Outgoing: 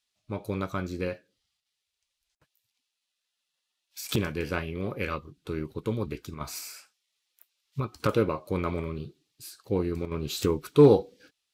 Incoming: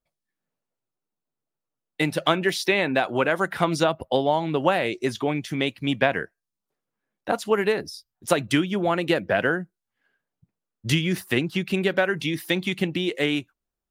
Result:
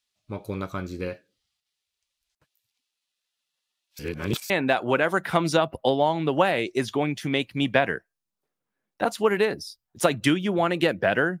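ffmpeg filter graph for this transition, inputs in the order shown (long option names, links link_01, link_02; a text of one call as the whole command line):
ffmpeg -i cue0.wav -i cue1.wav -filter_complex "[0:a]apad=whole_dur=11.4,atrim=end=11.4,asplit=2[link_01][link_02];[link_01]atrim=end=3.992[link_03];[link_02]atrim=start=3.988:end=4.502,asetpts=PTS-STARTPTS,areverse[link_04];[1:a]atrim=start=2.768:end=9.67[link_05];[link_03][link_04]acrossfade=duration=0.004:curve1=hsin:curve2=hsin[link_06];[link_06][link_05]acrossfade=duration=0.004:curve1=hsin:curve2=hsin" out.wav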